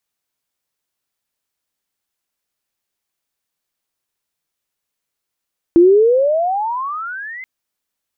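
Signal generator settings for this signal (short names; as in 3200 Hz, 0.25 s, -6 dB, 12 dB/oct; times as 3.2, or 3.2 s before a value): chirp logarithmic 330 Hz -> 2100 Hz -4.5 dBFS -> -28 dBFS 1.68 s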